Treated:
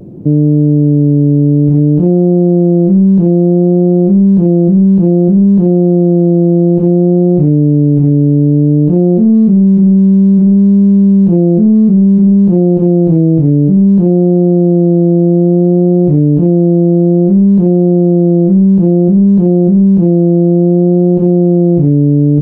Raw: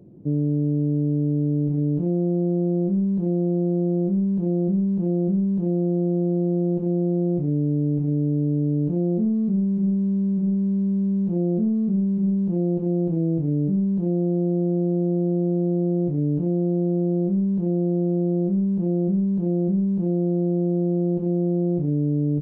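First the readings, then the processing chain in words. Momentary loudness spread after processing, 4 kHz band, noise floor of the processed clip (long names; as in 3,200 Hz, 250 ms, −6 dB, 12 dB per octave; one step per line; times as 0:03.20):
2 LU, can't be measured, −8 dBFS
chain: pitch vibrato 0.58 Hz 26 cents
boost into a limiter +18.5 dB
level −1 dB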